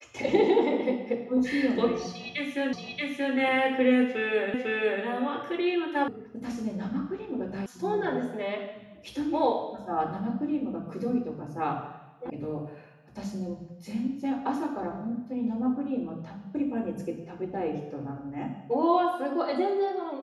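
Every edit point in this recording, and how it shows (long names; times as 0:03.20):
0:02.73: the same again, the last 0.63 s
0:04.54: the same again, the last 0.5 s
0:06.08: cut off before it has died away
0:07.66: cut off before it has died away
0:12.30: cut off before it has died away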